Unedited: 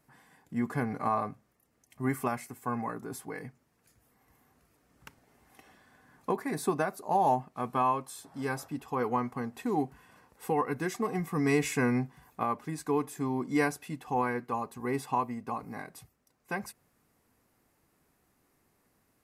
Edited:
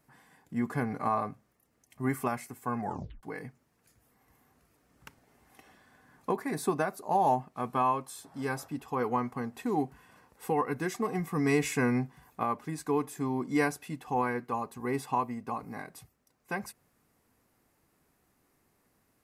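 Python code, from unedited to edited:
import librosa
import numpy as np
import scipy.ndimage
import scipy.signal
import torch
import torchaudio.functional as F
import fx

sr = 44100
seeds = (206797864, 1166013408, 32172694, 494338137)

y = fx.edit(x, sr, fx.tape_stop(start_s=2.8, length_s=0.43), tone=tone)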